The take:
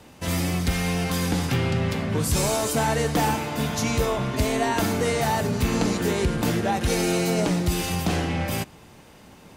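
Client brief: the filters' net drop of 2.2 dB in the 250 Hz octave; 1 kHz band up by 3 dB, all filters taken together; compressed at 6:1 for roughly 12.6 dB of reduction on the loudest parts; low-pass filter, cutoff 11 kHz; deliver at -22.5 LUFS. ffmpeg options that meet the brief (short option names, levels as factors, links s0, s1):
-af "lowpass=11000,equalizer=f=250:t=o:g=-3.5,equalizer=f=1000:t=o:g=4,acompressor=threshold=0.0251:ratio=6,volume=3.98"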